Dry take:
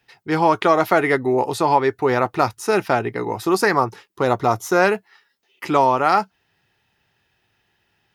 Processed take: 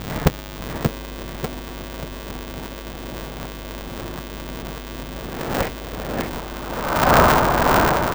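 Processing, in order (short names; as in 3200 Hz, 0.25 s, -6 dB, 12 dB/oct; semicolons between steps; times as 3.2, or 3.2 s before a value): spectral trails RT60 2.64 s; treble ducked by the level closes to 560 Hz, closed at -10.5 dBFS; bell 62 Hz +14 dB 1.7 oct; low-pass opened by the level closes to 750 Hz, open at -22.5 dBFS; negative-ratio compressor -33 dBFS, ratio -0.5; whisperiser; buzz 100 Hz, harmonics 34, -45 dBFS -2 dB/oct; tilt -3 dB/oct; feedback echo 0.588 s, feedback 41%, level -3.5 dB; polarity switched at an audio rate 150 Hz; gain +6 dB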